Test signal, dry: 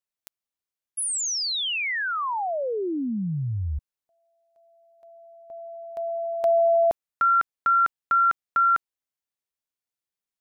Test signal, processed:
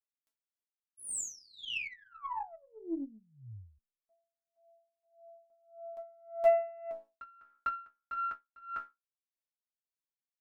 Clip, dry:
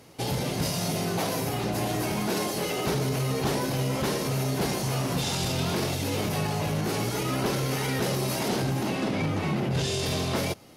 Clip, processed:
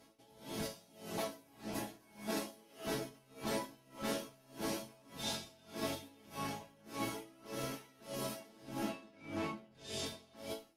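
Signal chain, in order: chord resonator A3 major, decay 0.26 s; Chebyshev shaper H 3 -22 dB, 4 -29 dB, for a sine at -26.5 dBFS; logarithmic tremolo 1.7 Hz, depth 27 dB; trim +10.5 dB

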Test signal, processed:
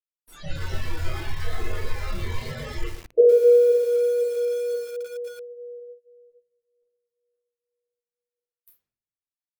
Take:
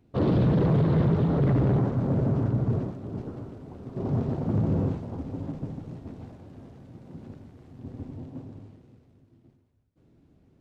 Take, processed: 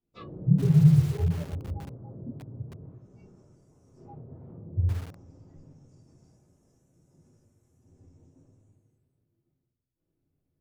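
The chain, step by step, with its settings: low-pass that closes with the level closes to 620 Hz, closed at -21 dBFS; flange 0.31 Hz, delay 4.6 ms, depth 7 ms, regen -61%; simulated room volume 93 m³, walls mixed, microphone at 2 m; spectral noise reduction 24 dB; bit-crushed delay 115 ms, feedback 35%, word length 6-bit, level -8 dB

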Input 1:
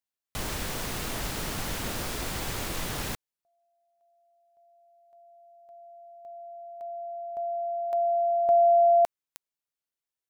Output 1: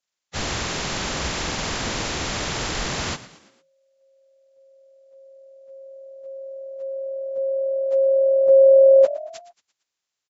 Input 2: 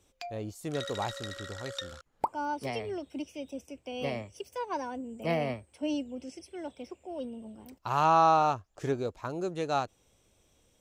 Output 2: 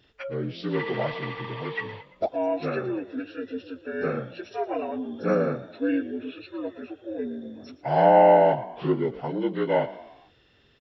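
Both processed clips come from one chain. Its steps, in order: frequency axis rescaled in octaves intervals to 76%; frequency-shifting echo 114 ms, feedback 49%, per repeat +40 Hz, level -16.5 dB; trim +7.5 dB

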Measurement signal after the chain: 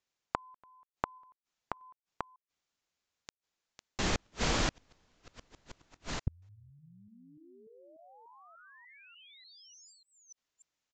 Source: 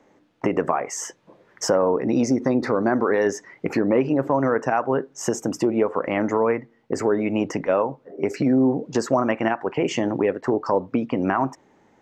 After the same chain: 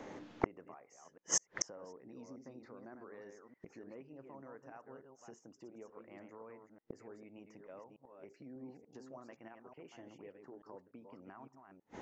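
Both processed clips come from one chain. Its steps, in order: chunks repeated in reverse 295 ms, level -6 dB; inverted gate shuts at -26 dBFS, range -41 dB; resampled via 16 kHz; trim +8.5 dB

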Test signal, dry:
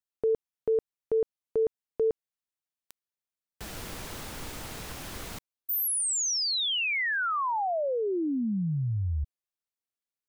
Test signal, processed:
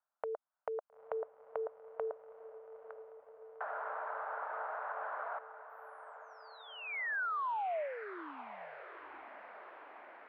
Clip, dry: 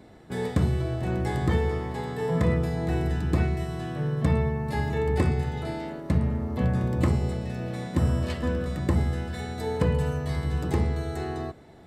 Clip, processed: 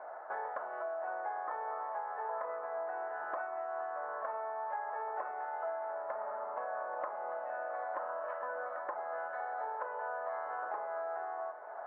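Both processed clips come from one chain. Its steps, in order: elliptic band-pass 610–1500 Hz, stop band 70 dB; compression 6:1, threshold -51 dBFS; echo that smears into a reverb 898 ms, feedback 71%, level -13 dB; trim +13.5 dB

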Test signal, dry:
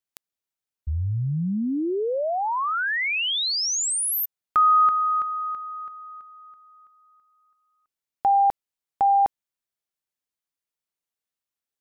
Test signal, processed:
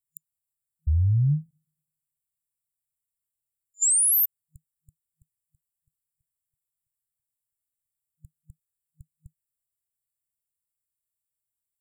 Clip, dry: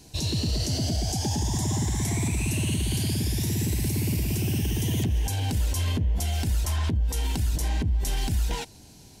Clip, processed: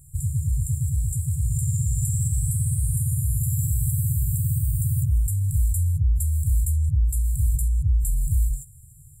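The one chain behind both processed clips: FFT band-reject 160–7100 Hz; trim +4.5 dB

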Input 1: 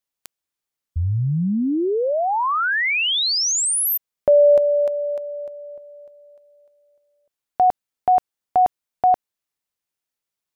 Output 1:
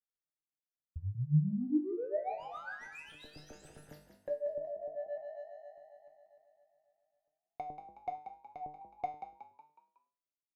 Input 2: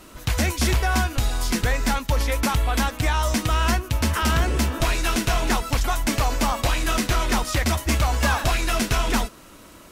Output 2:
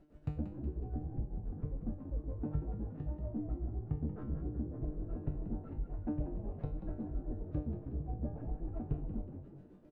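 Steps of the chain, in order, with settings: median filter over 41 samples; treble shelf 2.2 kHz -9.5 dB; low-pass that closes with the level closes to 390 Hz, closed at -19 dBFS; tremolo 7.4 Hz, depth 94%; feedback comb 150 Hz, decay 0.42 s, harmonics all, mix 90%; frequency-shifting echo 184 ms, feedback 47%, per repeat +49 Hz, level -9.5 dB; trim +3.5 dB

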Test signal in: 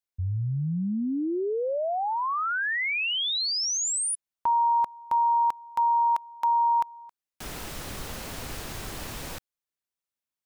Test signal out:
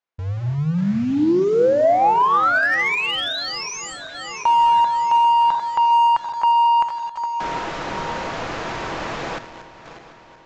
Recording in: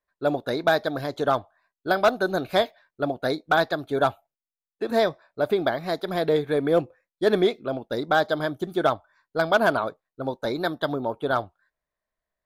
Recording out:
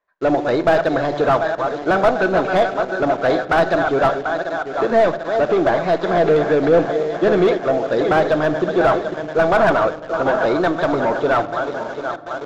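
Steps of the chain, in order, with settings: backward echo that repeats 370 ms, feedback 70%, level -12 dB; overdrive pedal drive 22 dB, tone 1.7 kHz, clips at -8 dBFS; in parallel at -4.5 dB: bit crusher 5-bit; on the sum: simulated room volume 2100 m³, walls furnished, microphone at 0.71 m; resampled via 16 kHz; treble shelf 2.9 kHz -9 dB; slew-rate limiter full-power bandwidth 380 Hz; trim -2 dB

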